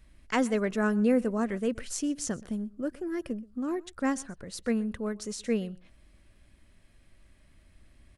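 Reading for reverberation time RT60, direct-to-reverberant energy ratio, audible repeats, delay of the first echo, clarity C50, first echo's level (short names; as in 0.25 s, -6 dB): none, none, 1, 0.125 s, none, -22.5 dB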